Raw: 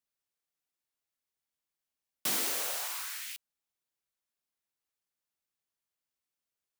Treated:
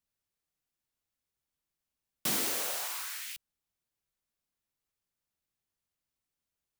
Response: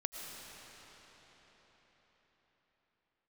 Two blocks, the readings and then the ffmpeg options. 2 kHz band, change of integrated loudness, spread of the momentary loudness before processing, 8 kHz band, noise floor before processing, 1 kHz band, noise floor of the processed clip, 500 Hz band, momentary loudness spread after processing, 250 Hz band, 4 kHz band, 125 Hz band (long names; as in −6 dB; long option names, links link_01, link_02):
0.0 dB, 0.0 dB, 12 LU, 0.0 dB, below −85 dBFS, +0.5 dB, below −85 dBFS, +2.0 dB, 12 LU, +4.5 dB, 0.0 dB, +7.5 dB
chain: -af "lowshelf=frequency=210:gain=12"